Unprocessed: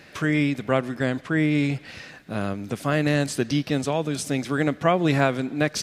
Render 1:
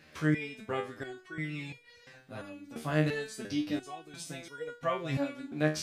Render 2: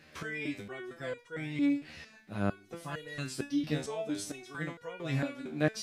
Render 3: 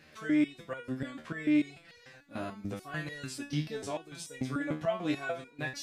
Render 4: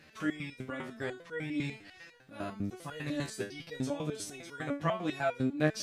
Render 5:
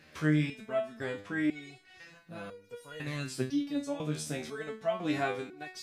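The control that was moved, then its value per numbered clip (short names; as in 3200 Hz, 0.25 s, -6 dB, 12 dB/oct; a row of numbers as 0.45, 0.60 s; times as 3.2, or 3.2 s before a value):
stepped resonator, rate: 2.9, 4.4, 6.8, 10, 2 Hz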